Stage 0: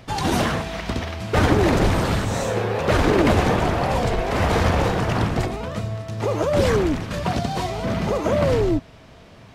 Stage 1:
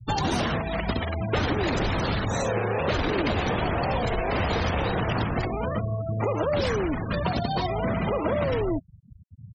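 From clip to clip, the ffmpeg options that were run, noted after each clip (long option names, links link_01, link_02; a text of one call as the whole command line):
ffmpeg -i in.wav -filter_complex "[0:a]afftfilt=real='re*gte(hypot(re,im),0.0355)':imag='im*gte(hypot(re,im),0.0355)':win_size=1024:overlap=0.75,asplit=2[link_01][link_02];[link_02]alimiter=limit=-13.5dB:level=0:latency=1,volume=0dB[link_03];[link_01][link_03]amix=inputs=2:normalize=0,acrossover=split=860|3100[link_04][link_05][link_06];[link_04]acompressor=threshold=-26dB:ratio=4[link_07];[link_05]acompressor=threshold=-34dB:ratio=4[link_08];[link_06]acompressor=threshold=-35dB:ratio=4[link_09];[link_07][link_08][link_09]amix=inputs=3:normalize=0" out.wav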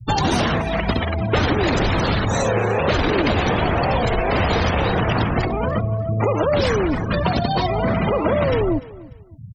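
ffmpeg -i in.wav -af "aecho=1:1:295|590:0.106|0.0286,volume=6.5dB" out.wav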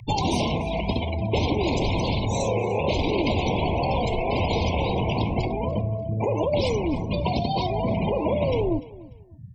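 ffmpeg -i in.wav -af "flanger=delay=8:depth=6.5:regen=-75:speed=0.9:shape=sinusoidal,aeval=exprs='val(0)+0.0282*sin(2*PI*1800*n/s)':channel_layout=same,asuperstop=centerf=1500:order=20:qfactor=1.4" out.wav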